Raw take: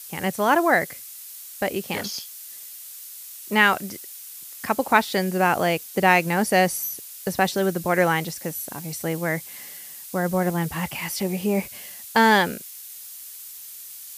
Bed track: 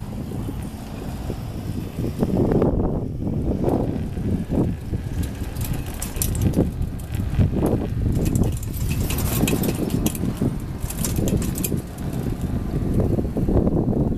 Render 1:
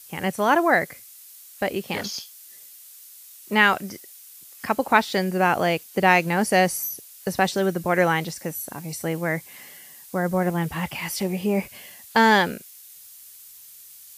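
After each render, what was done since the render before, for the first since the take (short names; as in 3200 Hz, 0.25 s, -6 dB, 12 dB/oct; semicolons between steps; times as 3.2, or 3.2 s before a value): noise print and reduce 6 dB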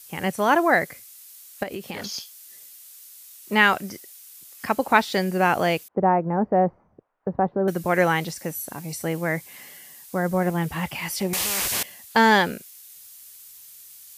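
1.63–2.12 compressor, threshold -28 dBFS; 5.88–7.68 LPF 1100 Hz 24 dB/oct; 11.33–11.83 spectral compressor 10:1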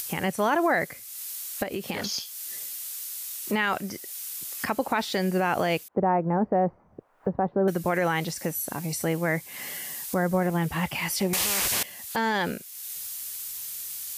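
upward compressor, threshold -25 dBFS; limiter -14.5 dBFS, peak gain reduction 11.5 dB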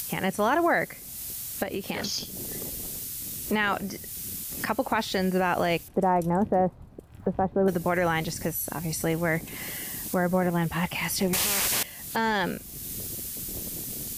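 add bed track -22.5 dB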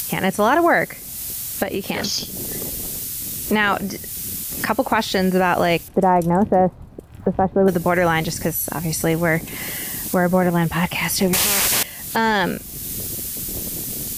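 gain +7.5 dB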